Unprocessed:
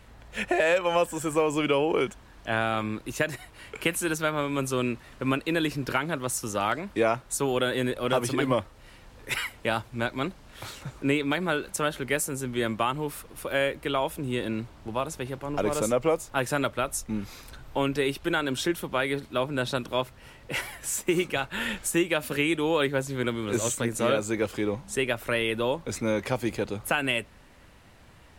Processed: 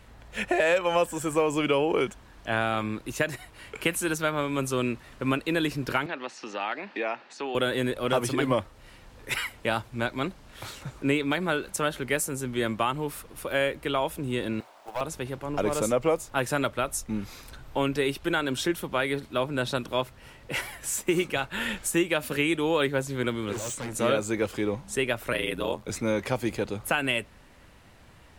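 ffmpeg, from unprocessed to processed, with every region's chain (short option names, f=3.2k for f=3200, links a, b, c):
-filter_complex "[0:a]asettb=1/sr,asplit=3[a][b][c];[a]atrim=end=6.064[d];[b]atrim=start=6.06:end=7.55,asetpts=PTS-STARTPTS,afade=t=in:d=0.004:c=qsin,afade=t=out:st=1.486:d=0.004:c=qsin,acompressor=threshold=-34dB:ratio=2:attack=3.2:release=140:knee=1:detection=peak,highpass=f=230:w=0.5412,highpass=f=230:w=1.3066,equalizer=f=810:t=q:w=4:g=6,equalizer=f=1.8k:t=q:w=4:g=8,equalizer=f=2.6k:t=q:w=4:g=9,equalizer=f=4.4k:t=q:w=4:g=5,lowpass=f=5k:w=0.5412,lowpass=f=5k:w=1.3066[e];[c]atrim=start=7.546[f];[d][e]acrossfade=d=0.004:c1=hsin:c2=qsin[g];[g][f]acrossfade=d=0.004:c1=qsin:c2=hsin,asettb=1/sr,asplit=3[h][i][j];[h]atrim=end=14.604[k];[i]atrim=start=14.6:end=15.01,asetpts=PTS-STARTPTS,afade=t=in:d=0.004:c=qsin,afade=t=out:st=0.406:d=0.004:c=qsin,highpass=f=680:t=q:w=2.2,acrusher=bits=4:mode=log:mix=0:aa=0.000001,aeval=exprs='(tanh(20*val(0)+0.35)-tanh(0.35))/20':c=same[l];[j]atrim=start=15.006[m];[k][l]acrossfade=d=0.004:c1=hsin:c2=qsin[n];[n][m]acrossfade=d=0.004:c1=qsin:c2=hsin,asettb=1/sr,asplit=3[o][p][q];[o]atrim=end=23.524[r];[p]atrim=start=23.52:end=23.93,asetpts=PTS-STARTPTS,afade=t=in:d=0.004:c=qsin,afade=t=out:st=0.406:d=0.004:c=qsin,lowpass=9.2k,volume=31dB,asoftclip=hard,volume=-31dB[s];[q]atrim=start=23.926[t];[r][s]acrossfade=d=0.004:c1=hsin:c2=qsin[u];[u][t]acrossfade=d=0.004:c1=qsin:c2=hsin,asettb=1/sr,asplit=3[v][w][x];[v]atrim=end=25.324[y];[w]atrim=start=25.32:end=25.9,asetpts=PTS-STARTPTS,afade=t=in:d=0.004:c=qsin,afade=t=out:st=0.576:d=0.004:c=qsin,highshelf=f=6.5k:g=6,aeval=exprs='val(0)*sin(2*PI*45*n/s)':c=same[z];[x]atrim=start=25.896[aa];[y][z]acrossfade=d=0.004:c1=hsin:c2=qsin[ab];[ab][aa]acrossfade=d=0.004:c1=qsin:c2=hsin"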